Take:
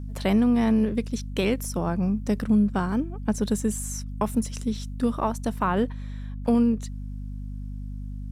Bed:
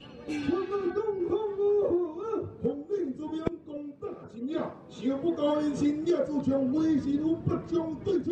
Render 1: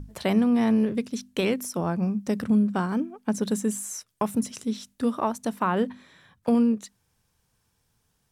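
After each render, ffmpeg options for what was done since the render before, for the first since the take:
-af "bandreject=f=50:t=h:w=6,bandreject=f=100:t=h:w=6,bandreject=f=150:t=h:w=6,bandreject=f=200:t=h:w=6,bandreject=f=250:t=h:w=6"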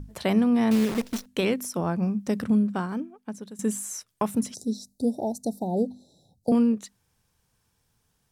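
-filter_complex "[0:a]asettb=1/sr,asplit=3[s0][s1][s2];[s0]atrim=end=0.714[s3];[s1]atrim=start=0.71:end=1.26,asetpts=PTS-STARTPTS,afade=t=in:d=0.004:c=qsin,afade=t=out:st=0.546:d=0.004:c=qsin,acrusher=bits=6:dc=4:mix=0:aa=0.000001[s4];[s2]atrim=start=1.256[s5];[s3][s4]acrossfade=d=0.004:c1=hsin:c2=qsin[s6];[s6][s5]acrossfade=d=0.004:c1=qsin:c2=hsin,asettb=1/sr,asplit=3[s7][s8][s9];[s7]atrim=end=4.544[s10];[s8]atrim=start=4.54:end=6.52,asetpts=PTS-STARTPTS,afade=t=in:d=0.004:c=qsin,afade=t=out:st=1.976:d=0.004:c=qsin,asuperstop=centerf=1800:order=20:qfactor=0.58[s11];[s9]atrim=start=6.516[s12];[s10][s11]acrossfade=d=0.004:c1=hsin:c2=qsin[s13];[s13][s12]acrossfade=d=0.004:c1=qsin:c2=hsin,asplit=2[s14][s15];[s14]atrim=end=3.59,asetpts=PTS-STARTPTS,afade=t=out:st=2.47:d=1.12:silence=0.0944061[s16];[s15]atrim=start=3.59,asetpts=PTS-STARTPTS,afade=t=in:d=0.004:c=hsin:silence=0.0944061[s17];[s16][s17]concat=n=2:v=0:a=1"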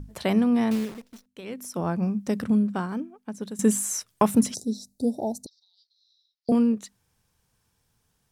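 -filter_complex "[0:a]asettb=1/sr,asplit=3[s0][s1][s2];[s0]atrim=end=5.464[s3];[s1]atrim=start=5.46:end=6.49,asetpts=PTS-STARTPTS,afade=t=in:d=0.004:c=qsin,afade=t=out:st=1.026:d=0.004:c=qsin,asuperpass=centerf=3100:order=12:qfactor=0.85[s4];[s2]atrim=start=6.486[s5];[s3][s4]acrossfade=d=0.004:c1=hsin:c2=qsin[s6];[s6][s5]acrossfade=d=0.004:c1=qsin:c2=hsin,asplit=5[s7][s8][s9][s10][s11];[s7]atrim=end=1,asetpts=PTS-STARTPTS,afade=t=out:st=0.58:d=0.42:silence=0.149624[s12];[s8]atrim=start=1:end=1.44,asetpts=PTS-STARTPTS,volume=0.15[s13];[s9]atrim=start=1.44:end=3.402,asetpts=PTS-STARTPTS,afade=t=in:d=0.42:silence=0.149624[s14];[s10]atrim=start=3.398:end=4.602,asetpts=PTS-STARTPTS,volume=2[s15];[s11]atrim=start=4.598[s16];[s12][s13][s14]concat=n=3:v=0:a=1[s17];[s17][s15]acrossfade=d=0.004:c1=hsin:c2=hsin[s18];[s18][s16]acrossfade=d=0.004:c1=hsin:c2=hsin"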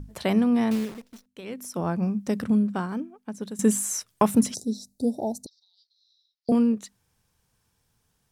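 -af anull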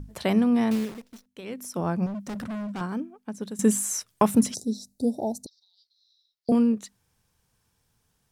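-filter_complex "[0:a]asettb=1/sr,asplit=3[s0][s1][s2];[s0]atrim=end=2.064[s3];[s1]atrim=start=2.06:end=2.81,asetpts=PTS-STARTPTS,afade=t=in:d=0.004:c=qsin,afade=t=out:st=0.746:d=0.004:c=qsin,asoftclip=type=hard:threshold=0.0282[s4];[s2]atrim=start=2.806[s5];[s3][s4]acrossfade=d=0.004:c1=hsin:c2=qsin[s6];[s6][s5]acrossfade=d=0.004:c1=qsin:c2=hsin"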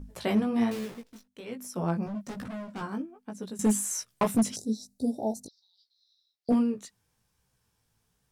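-af "flanger=delay=15.5:depth=3.7:speed=1.2,asoftclip=type=hard:threshold=0.126"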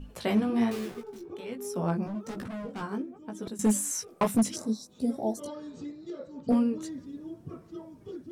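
-filter_complex "[1:a]volume=0.211[s0];[0:a][s0]amix=inputs=2:normalize=0"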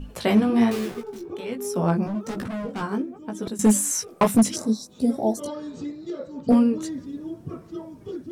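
-af "volume=2.24"

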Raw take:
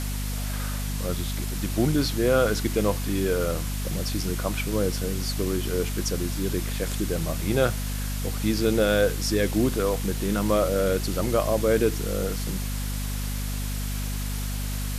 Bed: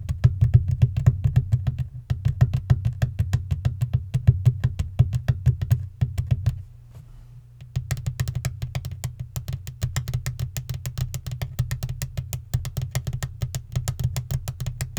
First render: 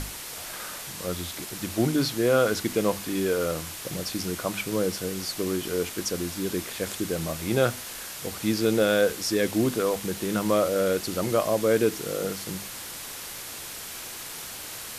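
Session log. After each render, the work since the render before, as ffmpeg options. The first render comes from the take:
-af "bandreject=f=50:t=h:w=6,bandreject=f=100:t=h:w=6,bandreject=f=150:t=h:w=6,bandreject=f=200:t=h:w=6,bandreject=f=250:t=h:w=6"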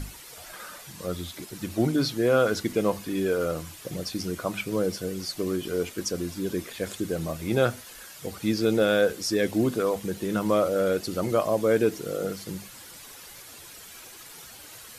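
-af "afftdn=nr=10:nf=-38"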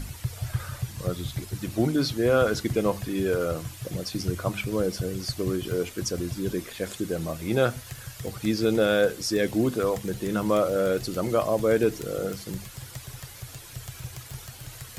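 -filter_complex "[1:a]volume=0.211[s0];[0:a][s0]amix=inputs=2:normalize=0"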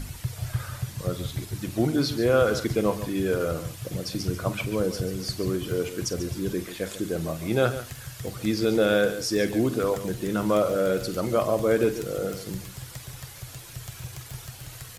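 -filter_complex "[0:a]asplit=2[s0][s1];[s1]adelay=48,volume=0.211[s2];[s0][s2]amix=inputs=2:normalize=0,aecho=1:1:141:0.237"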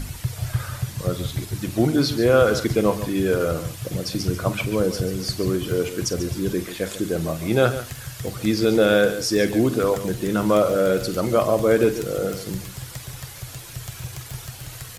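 -af "volume=1.68"

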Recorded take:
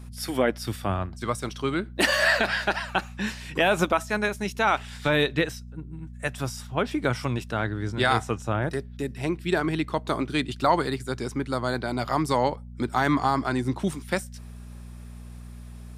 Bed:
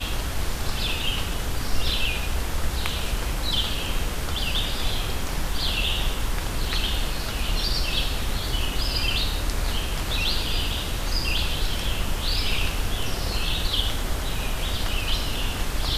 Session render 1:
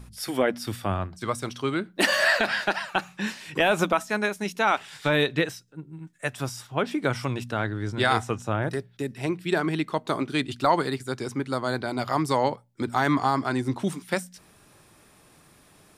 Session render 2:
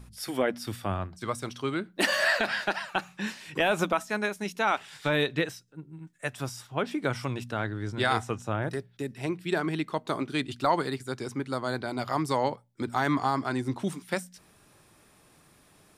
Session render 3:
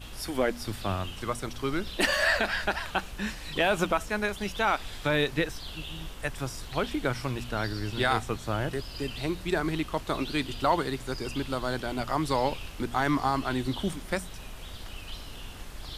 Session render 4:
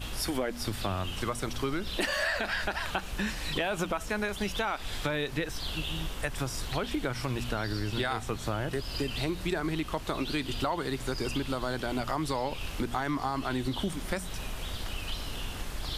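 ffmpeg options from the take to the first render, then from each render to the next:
-af "bandreject=f=60:t=h:w=4,bandreject=f=120:t=h:w=4,bandreject=f=180:t=h:w=4,bandreject=f=240:t=h:w=4"
-af "volume=0.668"
-filter_complex "[1:a]volume=0.168[s0];[0:a][s0]amix=inputs=2:normalize=0"
-filter_complex "[0:a]asplit=2[s0][s1];[s1]alimiter=limit=0.075:level=0:latency=1,volume=0.891[s2];[s0][s2]amix=inputs=2:normalize=0,acompressor=threshold=0.0398:ratio=4"

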